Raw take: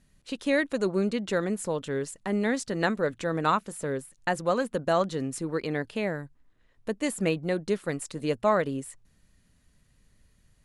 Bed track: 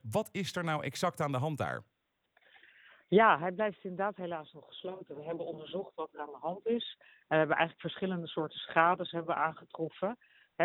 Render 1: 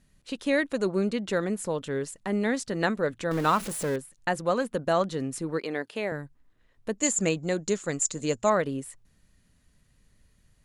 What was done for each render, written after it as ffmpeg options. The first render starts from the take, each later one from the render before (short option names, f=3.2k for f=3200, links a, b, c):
-filter_complex "[0:a]asettb=1/sr,asplit=3[a][b][c];[a]atrim=end=3.314[d];[b]atrim=start=3.31:end=3.96,asetpts=PTS-STARTPTS,afade=t=in:d=0.004:c=qsin,afade=t=out:st=0.646:d=0.004:c=qsin,aeval=exprs='val(0)+0.5*0.0237*sgn(val(0))':c=same[e];[c]atrim=start=3.956[f];[d][e]acrossfade=d=0.004:c1=hsin:c2=qsin[g];[g][f]acrossfade=d=0.004:c1=qsin:c2=hsin,asettb=1/sr,asplit=3[h][i][j];[h]atrim=end=5.594[k];[i]atrim=start=5.59:end=6.12,asetpts=PTS-STARTPTS,afade=t=in:d=0.004:c=qsin,afade=t=out:st=0.526:d=0.004:c=qsin,highpass=280[l];[j]atrim=start=6.116[m];[k][l]acrossfade=d=0.004:c1=hsin:c2=qsin[n];[n][m]acrossfade=d=0.004:c1=qsin:c2=hsin,asettb=1/sr,asplit=3[o][p][q];[o]atrim=end=6.984[r];[p]atrim=start=6.98:end=8.5,asetpts=PTS-STARTPTS,afade=t=in:d=0.004:c=qsin,afade=t=out:st=1.516:d=0.004:c=qsin,lowpass=f=7k:t=q:w=12[s];[q]atrim=start=8.496[t];[r][s]acrossfade=d=0.004:c1=hsin:c2=qsin[u];[u][t]acrossfade=d=0.004:c1=qsin:c2=hsin"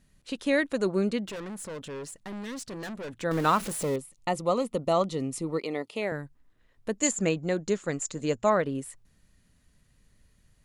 -filter_complex "[0:a]asettb=1/sr,asplit=3[a][b][c];[a]atrim=end=1.254[d];[b]atrim=start=1.25:end=3.22,asetpts=PTS-STARTPTS,afade=t=in:d=0.004:c=qsin,afade=t=out:st=1.966:d=0.004:c=qsin,aeval=exprs='(tanh(56.2*val(0)+0.15)-tanh(0.15))/56.2':c=same[e];[c]atrim=start=3.216[f];[d][e]acrossfade=d=0.004:c1=hsin:c2=qsin[g];[g][f]acrossfade=d=0.004:c1=qsin:c2=hsin,asettb=1/sr,asplit=3[h][i][j];[h]atrim=end=3.824[k];[i]atrim=start=3.82:end=6.02,asetpts=PTS-STARTPTS,afade=t=in:d=0.004:c=qsin,afade=t=out:st=2.196:d=0.004:c=qsin,asuperstop=centerf=1600:order=4:qfactor=3[l];[j]atrim=start=6.016[m];[k][l]acrossfade=d=0.004:c1=hsin:c2=qsin[n];[n][m]acrossfade=d=0.004:c1=qsin:c2=hsin,asettb=1/sr,asplit=3[o][p][q];[o]atrim=end=7.114[r];[p]atrim=start=7.11:end=8.75,asetpts=PTS-STARTPTS,afade=t=in:d=0.004:c=qsin,afade=t=out:st=1.636:d=0.004:c=qsin,equalizer=f=9.5k:w=0.52:g=-8.5[s];[q]atrim=start=8.746[t];[r][s]acrossfade=d=0.004:c1=hsin:c2=qsin[u];[u][t]acrossfade=d=0.004:c1=qsin:c2=hsin"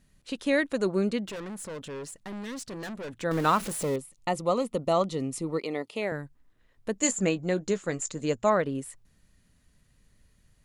-filter_complex "[0:a]asettb=1/sr,asplit=3[a][b][c];[a]atrim=end=6.944[d];[b]atrim=start=6.94:end=8.12,asetpts=PTS-STARTPTS,afade=t=in:d=0.004:c=qsin,afade=t=out:st=1.176:d=0.004:c=qsin,asplit=2[e][f];[f]adelay=16,volume=-11.5dB[g];[e][g]amix=inputs=2:normalize=0,atrim=end_sample=52038[h];[c]atrim=start=8.116[i];[d][h]acrossfade=d=0.004:c1=hsin:c2=qsin[j];[j][i]acrossfade=d=0.004:c1=qsin:c2=hsin"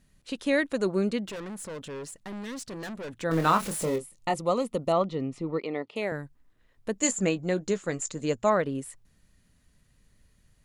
-filter_complex "[0:a]asettb=1/sr,asplit=3[a][b][c];[a]atrim=end=3.274[d];[b]atrim=start=3.27:end=4.34,asetpts=PTS-STARTPTS,afade=t=in:d=0.004:c=qsin,afade=t=out:st=1.066:d=0.004:c=qsin,asplit=2[e][f];[f]adelay=25,volume=-6.5dB[g];[e][g]amix=inputs=2:normalize=0,atrim=end_sample=47187[h];[c]atrim=start=4.336[i];[d][h]acrossfade=d=0.004:c1=hsin:c2=qsin[j];[j][i]acrossfade=d=0.004:c1=qsin:c2=hsin,asettb=1/sr,asplit=3[k][l][m];[k]atrim=end=4.924[n];[l]atrim=start=4.92:end=5.96,asetpts=PTS-STARTPTS,afade=t=in:d=0.004:c=qsin,afade=t=out:st=1.036:d=0.004:c=qsin,lowpass=3.1k[o];[m]atrim=start=5.956[p];[n][o]acrossfade=d=0.004:c1=hsin:c2=qsin[q];[q][p]acrossfade=d=0.004:c1=qsin:c2=hsin"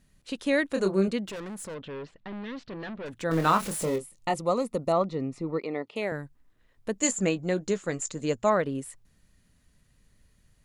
-filter_complex "[0:a]asettb=1/sr,asplit=3[a][b][c];[a]atrim=end=0.684[d];[b]atrim=start=0.68:end=1.08,asetpts=PTS-STARTPTS,afade=t=in:d=0.004:c=qsin,afade=t=out:st=0.396:d=0.004:c=qsin,asplit=2[e][f];[f]adelay=26,volume=-5.5dB[g];[e][g]amix=inputs=2:normalize=0,atrim=end_sample=17640[h];[c]atrim=start=1.076[i];[d][h]acrossfade=d=0.004:c1=hsin:c2=qsin[j];[j][i]acrossfade=d=0.004:c1=qsin:c2=hsin,asettb=1/sr,asplit=3[k][l][m];[k]atrim=end=1.744[n];[l]atrim=start=1.74:end=3.06,asetpts=PTS-STARTPTS,afade=t=in:d=0.004:c=qsin,afade=t=out:st=1.316:d=0.004:c=qsin,lowpass=f=3.8k:w=0.5412,lowpass=f=3.8k:w=1.3066[o];[m]atrim=start=3.056[p];[n][o]acrossfade=d=0.004:c1=hsin:c2=qsin[q];[q][p]acrossfade=d=0.004:c1=qsin:c2=hsin,asettb=1/sr,asplit=3[r][s][t];[r]atrim=end=4.444[u];[s]atrim=start=4.44:end=5.87,asetpts=PTS-STARTPTS,afade=t=in:d=0.004:c=qsin,afade=t=out:st=1.426:d=0.004:c=qsin,equalizer=f=3.1k:w=7:g=-12[v];[t]atrim=start=5.866[w];[u][v]acrossfade=d=0.004:c1=hsin:c2=qsin[x];[x][w]acrossfade=d=0.004:c1=qsin:c2=hsin"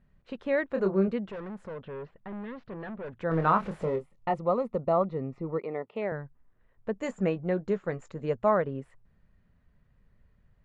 -af "lowpass=1.6k,equalizer=f=290:w=5.1:g=-9"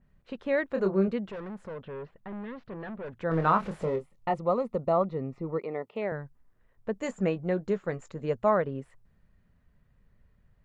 -af "adynamicequalizer=threshold=0.00447:dfrequency=3400:dqfactor=0.7:tfrequency=3400:tqfactor=0.7:attack=5:release=100:ratio=0.375:range=2:mode=boostabove:tftype=highshelf"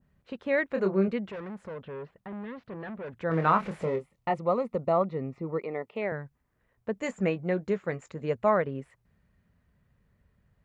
-af "highpass=52,adynamicequalizer=threshold=0.00316:dfrequency=2200:dqfactor=2.4:tfrequency=2200:tqfactor=2.4:attack=5:release=100:ratio=0.375:range=3:mode=boostabove:tftype=bell"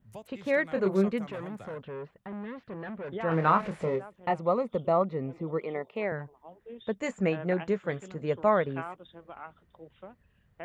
-filter_complex "[1:a]volume=-13dB[a];[0:a][a]amix=inputs=2:normalize=0"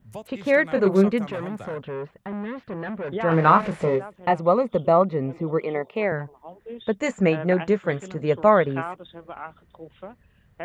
-af "volume=7.5dB"